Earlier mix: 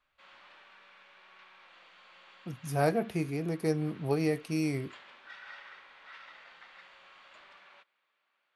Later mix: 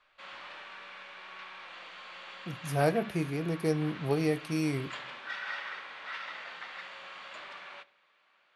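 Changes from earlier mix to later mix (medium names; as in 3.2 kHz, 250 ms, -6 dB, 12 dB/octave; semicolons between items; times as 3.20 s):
background +9.5 dB; reverb: on, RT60 0.50 s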